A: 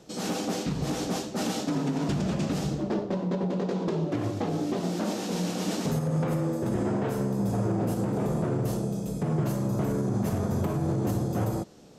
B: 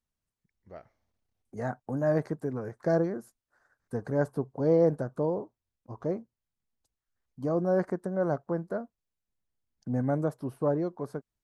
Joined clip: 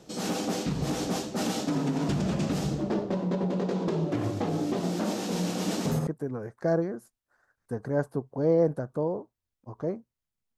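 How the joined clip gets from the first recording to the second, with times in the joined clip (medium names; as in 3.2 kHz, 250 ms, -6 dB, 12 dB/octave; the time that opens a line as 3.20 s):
A
6.07 s: go over to B from 2.29 s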